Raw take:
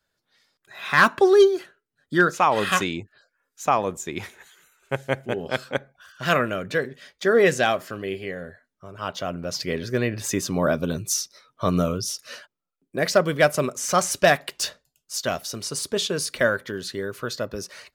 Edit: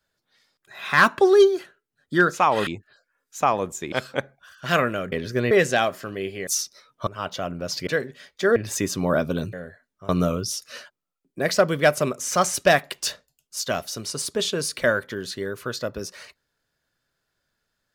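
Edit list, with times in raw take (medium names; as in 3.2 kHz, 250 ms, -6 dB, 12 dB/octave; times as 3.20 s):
2.67–2.92 s: delete
4.17–5.49 s: delete
6.69–7.38 s: swap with 9.70–10.09 s
8.34–8.90 s: swap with 11.06–11.66 s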